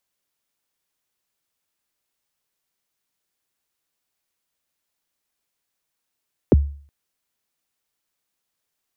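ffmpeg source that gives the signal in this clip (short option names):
-f lavfi -i "aevalsrc='0.473*pow(10,-3*t/0.47)*sin(2*PI*(540*0.025/log(71/540)*(exp(log(71/540)*min(t,0.025)/0.025)-1)+71*max(t-0.025,0)))':d=0.37:s=44100"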